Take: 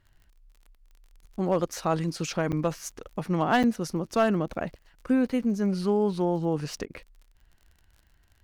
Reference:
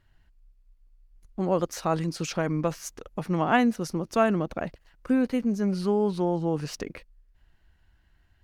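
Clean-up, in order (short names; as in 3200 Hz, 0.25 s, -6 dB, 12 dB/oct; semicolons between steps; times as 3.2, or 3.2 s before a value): clip repair -14.5 dBFS; de-click; interpolate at 2.52/3.63, 7.4 ms; interpolate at 6.86, 42 ms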